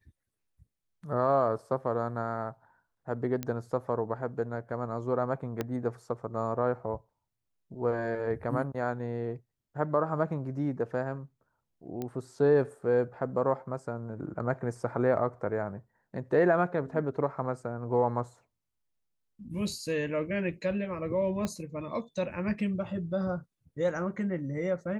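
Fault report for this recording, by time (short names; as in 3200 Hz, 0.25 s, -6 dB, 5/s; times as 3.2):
3.43 pop -18 dBFS
5.61 pop -17 dBFS
12.02 pop -22 dBFS
21.45 pop -18 dBFS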